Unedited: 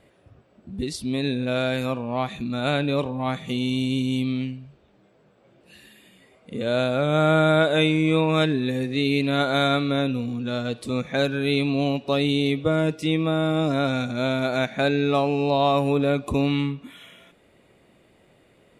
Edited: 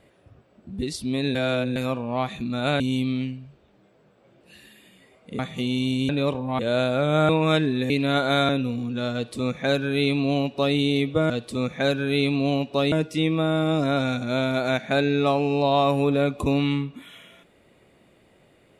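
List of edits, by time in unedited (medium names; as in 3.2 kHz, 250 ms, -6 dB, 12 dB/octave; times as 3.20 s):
1.35–1.76 s: reverse
2.80–3.30 s: swap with 4.00–6.59 s
7.29–8.16 s: delete
8.77–9.14 s: delete
9.73–9.99 s: delete
10.64–12.26 s: copy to 12.80 s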